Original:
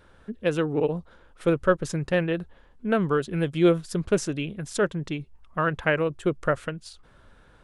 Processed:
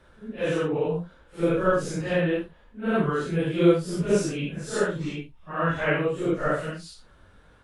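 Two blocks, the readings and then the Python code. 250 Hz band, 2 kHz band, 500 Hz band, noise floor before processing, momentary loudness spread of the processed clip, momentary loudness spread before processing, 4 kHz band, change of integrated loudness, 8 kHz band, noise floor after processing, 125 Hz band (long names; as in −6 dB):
+0.5 dB, 0.0 dB, 0.0 dB, −56 dBFS, 14 LU, 13 LU, 0.0 dB, +0.5 dB, 0.0 dB, −56 dBFS, 0.0 dB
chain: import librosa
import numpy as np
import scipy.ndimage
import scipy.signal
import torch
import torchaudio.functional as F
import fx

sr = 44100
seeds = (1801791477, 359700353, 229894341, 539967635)

y = fx.phase_scramble(x, sr, seeds[0], window_ms=200)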